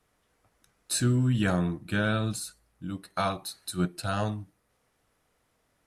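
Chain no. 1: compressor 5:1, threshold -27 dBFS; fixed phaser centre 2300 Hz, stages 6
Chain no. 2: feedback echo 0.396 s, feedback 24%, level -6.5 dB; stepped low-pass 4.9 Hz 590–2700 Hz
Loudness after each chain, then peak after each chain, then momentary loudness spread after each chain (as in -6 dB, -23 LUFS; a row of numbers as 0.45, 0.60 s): -35.5, -27.0 LUFS; -19.5, -7.0 dBFS; 10, 14 LU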